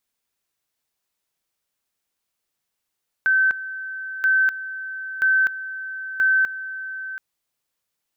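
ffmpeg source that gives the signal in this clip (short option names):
-f lavfi -i "aevalsrc='pow(10,(-14.5-14*gte(mod(t,0.98),0.25))/20)*sin(2*PI*1540*t)':d=3.92:s=44100"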